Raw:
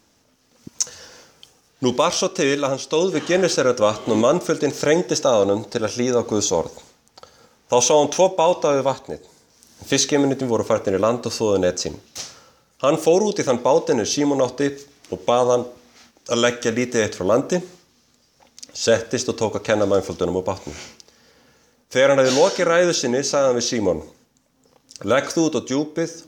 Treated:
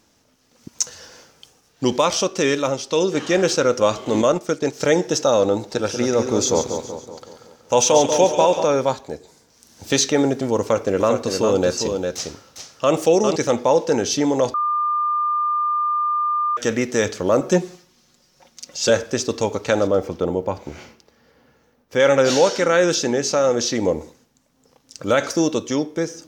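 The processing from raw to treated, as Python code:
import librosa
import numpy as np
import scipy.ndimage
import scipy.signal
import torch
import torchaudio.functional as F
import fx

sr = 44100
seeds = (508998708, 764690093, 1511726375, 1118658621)

y = fx.transient(x, sr, attack_db=-2, sustain_db=-9, at=(3.99, 4.81))
y = fx.echo_split(y, sr, split_hz=1400.0, low_ms=188, high_ms=140, feedback_pct=52, wet_db=-7.5, at=(5.56, 8.64))
y = fx.echo_single(y, sr, ms=403, db=-5.5, at=(10.6, 13.36))
y = fx.comb(y, sr, ms=5.5, depth=0.67, at=(17.4, 18.9))
y = fx.peak_eq(y, sr, hz=7200.0, db=-12.0, octaves=2.2, at=(19.87, 22.0))
y = fx.edit(y, sr, fx.bleep(start_s=14.54, length_s=2.03, hz=1200.0, db=-17.5), tone=tone)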